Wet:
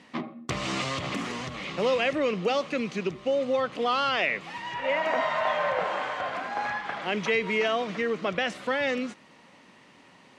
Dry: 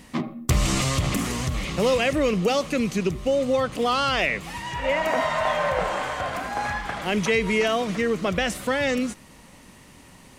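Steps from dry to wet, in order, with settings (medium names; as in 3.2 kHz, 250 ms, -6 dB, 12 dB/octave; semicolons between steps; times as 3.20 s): band-pass 140–4000 Hz; bass shelf 230 Hz -9 dB; trim -2 dB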